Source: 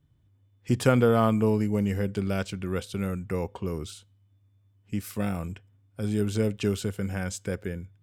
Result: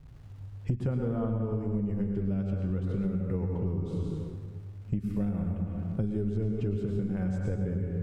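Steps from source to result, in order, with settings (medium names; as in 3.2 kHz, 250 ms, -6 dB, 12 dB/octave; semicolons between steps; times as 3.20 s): flange 0.98 Hz, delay 4.8 ms, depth 2.6 ms, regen -58%; crackle 540 per s -53 dBFS; tilt EQ -4.5 dB/octave; plate-style reverb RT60 1.4 s, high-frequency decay 0.7×, pre-delay 90 ms, DRR 1.5 dB; compression 16:1, threshold -31 dBFS, peak gain reduction 22 dB; trim +4.5 dB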